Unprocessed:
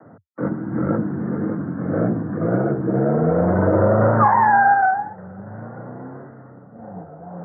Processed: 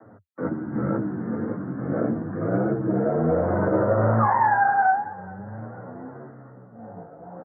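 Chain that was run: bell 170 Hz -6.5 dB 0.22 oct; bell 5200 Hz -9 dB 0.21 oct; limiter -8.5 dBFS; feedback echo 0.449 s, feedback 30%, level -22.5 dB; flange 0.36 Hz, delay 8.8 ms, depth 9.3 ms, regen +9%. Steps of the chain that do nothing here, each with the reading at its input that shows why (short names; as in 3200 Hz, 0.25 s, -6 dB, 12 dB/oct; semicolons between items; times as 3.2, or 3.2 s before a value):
bell 5200 Hz: input band ends at 1900 Hz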